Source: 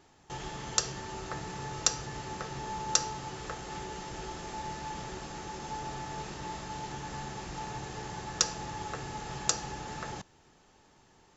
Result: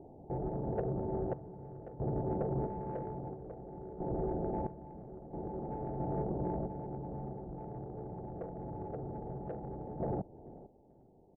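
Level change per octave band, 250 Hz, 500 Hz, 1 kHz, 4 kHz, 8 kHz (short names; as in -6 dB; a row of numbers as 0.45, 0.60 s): +4.5 dB, +5.5 dB, -6.0 dB, under -40 dB, n/a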